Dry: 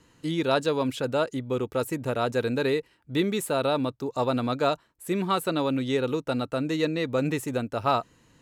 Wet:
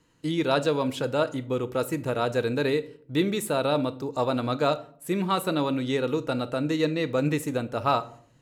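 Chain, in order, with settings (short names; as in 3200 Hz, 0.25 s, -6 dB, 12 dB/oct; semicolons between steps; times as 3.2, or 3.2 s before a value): gate -48 dBFS, range -6 dB; shoebox room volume 660 m³, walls furnished, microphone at 0.58 m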